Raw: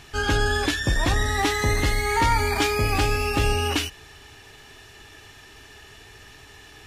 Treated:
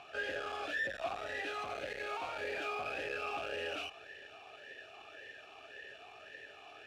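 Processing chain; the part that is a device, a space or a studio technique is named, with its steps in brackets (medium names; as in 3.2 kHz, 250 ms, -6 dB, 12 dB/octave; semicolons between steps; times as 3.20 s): talk box (valve stage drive 35 dB, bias 0.65; talking filter a-e 1.8 Hz); trim +11.5 dB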